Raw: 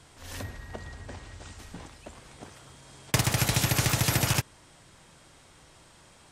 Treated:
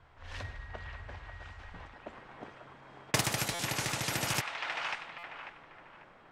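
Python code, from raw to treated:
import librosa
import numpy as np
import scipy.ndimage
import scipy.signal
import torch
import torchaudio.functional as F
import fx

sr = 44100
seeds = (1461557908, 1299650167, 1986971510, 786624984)

y = fx.high_shelf(x, sr, hz=7700.0, db=-2.5)
y = fx.echo_wet_bandpass(y, sr, ms=543, feedback_pct=37, hz=1500.0, wet_db=-4.0)
y = fx.rider(y, sr, range_db=4, speed_s=0.5)
y = fx.peak_eq(y, sr, hz=fx.steps((0.0, 250.0), (1.93, 64.0)), db=-13.5, octaves=2.2)
y = fx.env_lowpass(y, sr, base_hz=1400.0, full_db=-25.5)
y = fx.buffer_glitch(y, sr, at_s=(3.54, 5.18), block=256, repeats=8)
y = y * 10.0 ** (-3.0 / 20.0)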